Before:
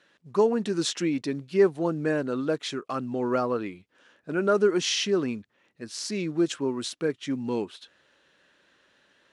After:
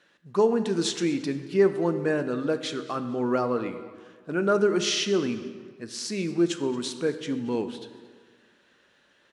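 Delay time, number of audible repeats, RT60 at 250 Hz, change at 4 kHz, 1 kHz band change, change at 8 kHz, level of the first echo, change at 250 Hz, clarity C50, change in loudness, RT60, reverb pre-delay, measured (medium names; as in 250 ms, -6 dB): 225 ms, 2, 1.7 s, +0.5 dB, +0.5 dB, +0.5 dB, -19.5 dB, +1.0 dB, 11.0 dB, +0.5 dB, 1.6 s, 3 ms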